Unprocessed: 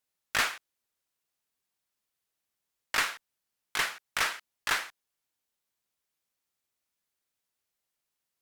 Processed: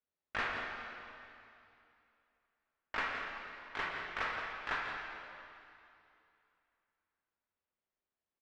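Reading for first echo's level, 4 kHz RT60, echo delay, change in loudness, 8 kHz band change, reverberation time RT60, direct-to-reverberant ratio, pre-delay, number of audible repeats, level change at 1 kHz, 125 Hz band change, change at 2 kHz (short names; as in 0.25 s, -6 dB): -9.5 dB, 2.5 s, 0.167 s, -9.0 dB, under -25 dB, 2.7 s, -1.5 dB, 6 ms, 1, -3.5 dB, -2.0 dB, -6.0 dB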